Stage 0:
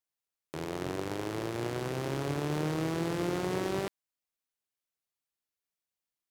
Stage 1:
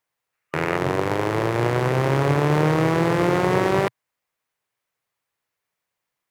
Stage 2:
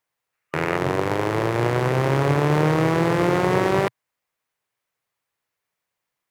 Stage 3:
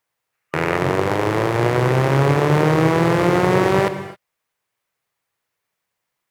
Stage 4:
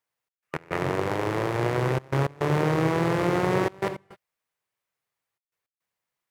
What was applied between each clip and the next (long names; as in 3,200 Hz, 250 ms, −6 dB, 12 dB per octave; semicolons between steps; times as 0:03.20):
gain on a spectral selection 0:00.33–0:00.77, 1,200–2,900 Hz +6 dB; octave-band graphic EQ 125/500/1,000/2,000 Hz +10/+7/+8/+8 dB; level +5.5 dB
no processing that can be heard
reverb whose tail is shaped and stops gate 290 ms flat, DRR 10 dB; level +3 dB
gate pattern "xx.x.xxxxxxx" 106 BPM −24 dB; level −7.5 dB